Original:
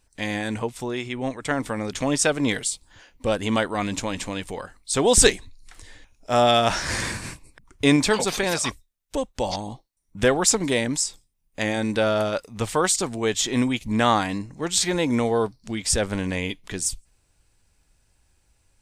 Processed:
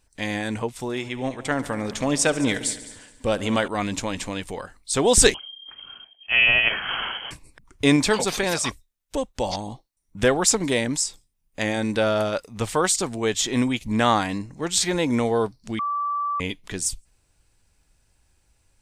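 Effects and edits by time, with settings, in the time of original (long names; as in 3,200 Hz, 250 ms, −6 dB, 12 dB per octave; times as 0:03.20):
0:00.71–0:03.68: echo machine with several playback heads 70 ms, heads all three, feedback 42%, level −19.5 dB
0:05.34–0:07.31: voice inversion scrambler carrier 3,200 Hz
0:15.79–0:16.40: beep over 1,160 Hz −22.5 dBFS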